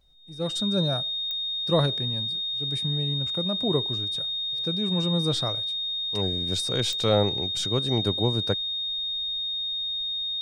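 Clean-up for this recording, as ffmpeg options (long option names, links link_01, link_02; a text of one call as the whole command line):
ffmpeg -i in.wav -af "adeclick=threshold=4,bandreject=frequency=3700:width=30" out.wav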